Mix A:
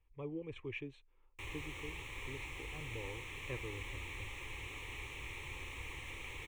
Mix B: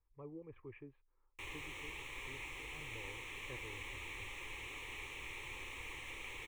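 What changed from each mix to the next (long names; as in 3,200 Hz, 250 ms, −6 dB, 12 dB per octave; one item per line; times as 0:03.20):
speech: add transistor ladder low-pass 1,800 Hz, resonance 35%
background: add parametric band 74 Hz −8.5 dB 2.7 octaves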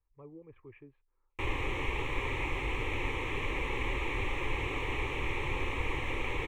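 background: remove first-order pre-emphasis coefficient 0.9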